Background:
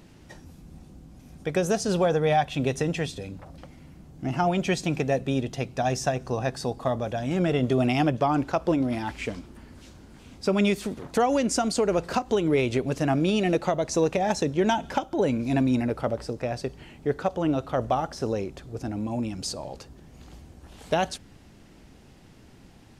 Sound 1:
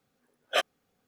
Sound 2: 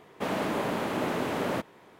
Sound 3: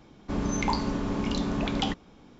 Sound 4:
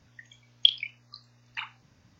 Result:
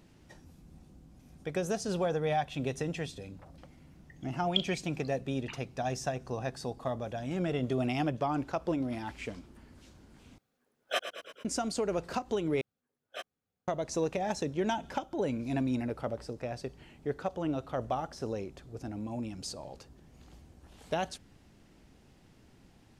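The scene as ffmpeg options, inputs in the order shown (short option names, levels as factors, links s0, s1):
-filter_complex "[1:a]asplit=2[s0][s1];[0:a]volume=0.398[s2];[s0]asplit=8[s3][s4][s5][s6][s7][s8][s9][s10];[s4]adelay=111,afreqshift=-30,volume=0.316[s11];[s5]adelay=222,afreqshift=-60,volume=0.193[s12];[s6]adelay=333,afreqshift=-90,volume=0.117[s13];[s7]adelay=444,afreqshift=-120,volume=0.0716[s14];[s8]adelay=555,afreqshift=-150,volume=0.0437[s15];[s9]adelay=666,afreqshift=-180,volume=0.0266[s16];[s10]adelay=777,afreqshift=-210,volume=0.0162[s17];[s3][s11][s12][s13][s14][s15][s16][s17]amix=inputs=8:normalize=0[s18];[s1]equalizer=f=88:w=0.8:g=9[s19];[s2]asplit=3[s20][s21][s22];[s20]atrim=end=10.384[s23];[s18]atrim=end=1.07,asetpts=PTS-STARTPTS,volume=0.531[s24];[s21]atrim=start=11.446:end=12.614[s25];[s19]atrim=end=1.07,asetpts=PTS-STARTPTS,volume=0.158[s26];[s22]atrim=start=13.676[s27];[4:a]atrim=end=2.19,asetpts=PTS-STARTPTS,volume=0.316,afade=t=in:d=0.004:c=hsin,afade=t=out:st=2.186:d=0.004:c=hsin,adelay=3910[s28];[s23][s24]acrossfade=d=0.004:c1=hsin:c2=hsin[s29];[s29][s25]acrossfade=d=0.004:c1=hsin:c2=hsin[s30];[s30][s26]acrossfade=d=0.004:c1=hsin:c2=hsin[s31];[s31][s27]acrossfade=d=0.004:c1=hsin:c2=hsin[s32];[s32][s28]amix=inputs=2:normalize=0"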